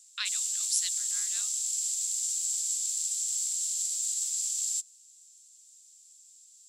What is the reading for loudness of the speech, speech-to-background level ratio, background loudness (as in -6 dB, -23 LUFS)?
-33.0 LUFS, -4.5 dB, -28.5 LUFS